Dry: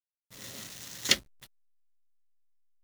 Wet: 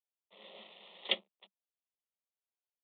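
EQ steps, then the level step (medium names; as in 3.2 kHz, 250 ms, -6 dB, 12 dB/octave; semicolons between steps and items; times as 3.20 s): steep high-pass 190 Hz 96 dB/octave; steep low-pass 3.6 kHz 96 dB/octave; static phaser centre 650 Hz, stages 4; 0.0 dB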